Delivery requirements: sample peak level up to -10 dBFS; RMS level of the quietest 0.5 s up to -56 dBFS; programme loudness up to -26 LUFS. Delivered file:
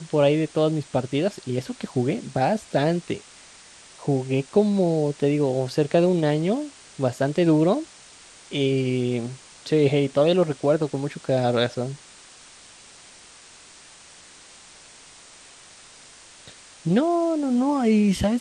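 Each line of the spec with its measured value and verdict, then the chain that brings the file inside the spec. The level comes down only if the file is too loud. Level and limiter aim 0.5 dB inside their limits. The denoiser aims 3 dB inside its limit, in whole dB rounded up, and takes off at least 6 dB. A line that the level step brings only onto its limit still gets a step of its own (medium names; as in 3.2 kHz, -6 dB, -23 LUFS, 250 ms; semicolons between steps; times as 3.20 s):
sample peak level -7.0 dBFS: fail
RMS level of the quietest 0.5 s -48 dBFS: fail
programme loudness -23.0 LUFS: fail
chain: noise reduction 8 dB, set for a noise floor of -48 dBFS; trim -3.5 dB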